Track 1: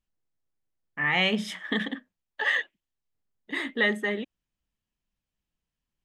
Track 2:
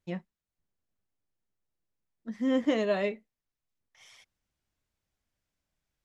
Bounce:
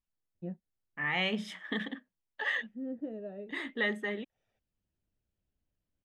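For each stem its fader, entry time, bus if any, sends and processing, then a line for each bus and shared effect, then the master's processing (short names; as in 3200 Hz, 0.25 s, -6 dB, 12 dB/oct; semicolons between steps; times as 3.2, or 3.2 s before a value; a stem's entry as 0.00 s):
-6.5 dB, 0.00 s, no send, dry
+1.5 dB, 0.35 s, no send, running mean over 41 samples; auto duck -12 dB, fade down 1.40 s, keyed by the first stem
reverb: off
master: high shelf 6200 Hz -6 dB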